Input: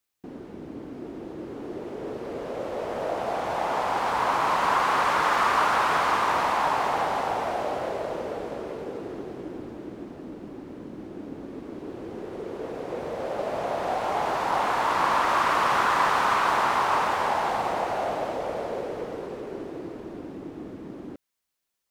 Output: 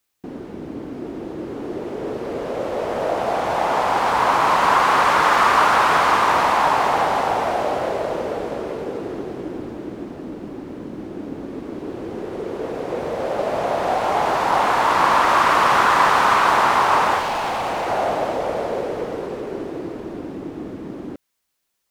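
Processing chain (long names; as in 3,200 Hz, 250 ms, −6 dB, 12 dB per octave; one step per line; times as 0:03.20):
0:17.19–0:17.87: hard clipping −28 dBFS, distortion −20 dB
level +7 dB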